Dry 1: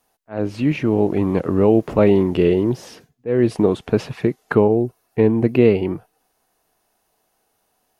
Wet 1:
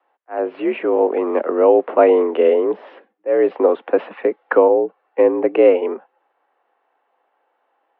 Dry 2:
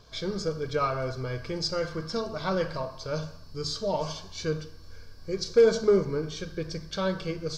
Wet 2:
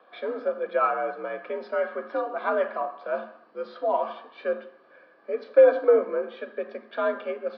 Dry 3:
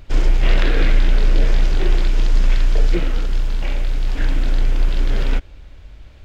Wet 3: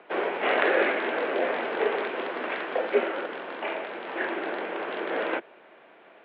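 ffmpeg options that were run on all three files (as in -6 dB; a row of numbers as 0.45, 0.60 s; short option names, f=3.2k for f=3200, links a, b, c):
-filter_complex "[0:a]acrossover=split=310 2200:gain=0.178 1 0.141[a][b][c];[a][b][c]amix=inputs=3:normalize=0,highpass=f=170:t=q:w=0.5412,highpass=f=170:t=q:w=1.307,lowpass=f=3.5k:t=q:w=0.5176,lowpass=f=3.5k:t=q:w=0.7071,lowpass=f=3.5k:t=q:w=1.932,afreqshift=64,volume=5dB"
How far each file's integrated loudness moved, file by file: +1.5, +3.0, -7.0 LU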